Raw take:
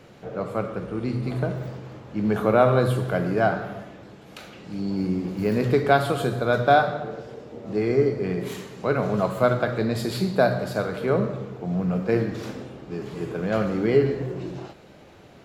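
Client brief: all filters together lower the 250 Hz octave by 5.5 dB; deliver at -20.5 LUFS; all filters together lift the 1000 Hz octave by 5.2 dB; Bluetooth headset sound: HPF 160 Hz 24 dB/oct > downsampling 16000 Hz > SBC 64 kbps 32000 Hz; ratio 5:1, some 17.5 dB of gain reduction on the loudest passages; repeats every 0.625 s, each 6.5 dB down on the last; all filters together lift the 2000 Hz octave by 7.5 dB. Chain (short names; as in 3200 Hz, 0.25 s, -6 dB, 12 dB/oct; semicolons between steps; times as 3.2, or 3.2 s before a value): bell 250 Hz -7.5 dB; bell 1000 Hz +7 dB; bell 2000 Hz +7.5 dB; compressor 5:1, threshold -29 dBFS; HPF 160 Hz 24 dB/oct; feedback echo 0.625 s, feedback 47%, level -6.5 dB; downsampling 16000 Hz; gain +12.5 dB; SBC 64 kbps 32000 Hz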